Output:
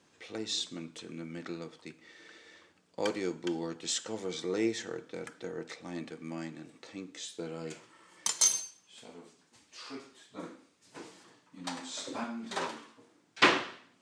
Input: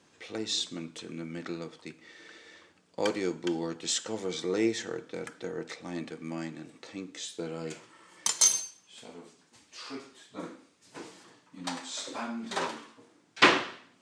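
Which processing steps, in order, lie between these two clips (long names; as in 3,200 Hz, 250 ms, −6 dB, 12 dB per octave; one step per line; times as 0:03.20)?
0:11.78–0:12.24: low-shelf EQ 380 Hz +9 dB
level −3 dB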